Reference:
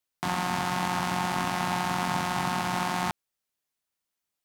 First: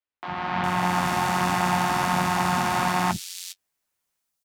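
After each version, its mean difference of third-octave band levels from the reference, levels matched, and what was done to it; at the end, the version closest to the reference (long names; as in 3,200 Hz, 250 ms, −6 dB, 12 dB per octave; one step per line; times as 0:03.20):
3.5 dB: automatic gain control gain up to 11 dB
flanger 1.3 Hz, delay 9.9 ms, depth 4.5 ms, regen −36%
three-band delay without the direct sound mids, lows, highs 50/410 ms, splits 290/3,700 Hz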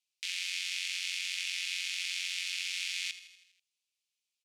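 23.5 dB: elliptic high-pass filter 2,400 Hz, stop band 60 dB
high-frequency loss of the air 57 metres
repeating echo 81 ms, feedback 59%, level −14 dB
level +5 dB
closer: first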